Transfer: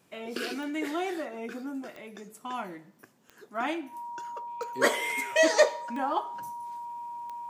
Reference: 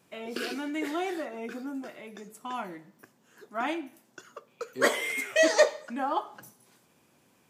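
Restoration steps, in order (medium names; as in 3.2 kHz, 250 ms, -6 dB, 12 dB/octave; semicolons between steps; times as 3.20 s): de-click; band-stop 950 Hz, Q 30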